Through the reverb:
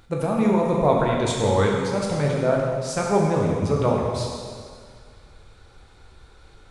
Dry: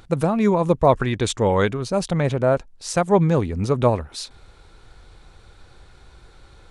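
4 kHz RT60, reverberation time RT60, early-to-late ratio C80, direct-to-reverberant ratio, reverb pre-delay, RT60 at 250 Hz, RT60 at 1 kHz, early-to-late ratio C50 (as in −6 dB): 1.9 s, 2.0 s, 2.0 dB, −2.5 dB, 6 ms, 2.0 s, 2.0 s, 0.5 dB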